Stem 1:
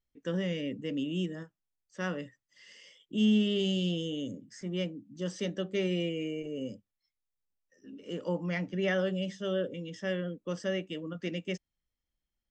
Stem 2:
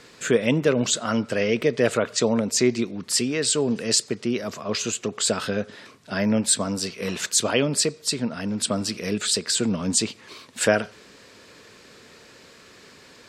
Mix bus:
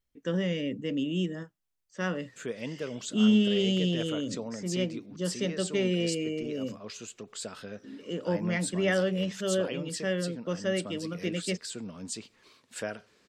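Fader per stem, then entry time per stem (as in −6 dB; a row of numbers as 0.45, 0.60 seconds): +3.0, −16.0 decibels; 0.00, 2.15 seconds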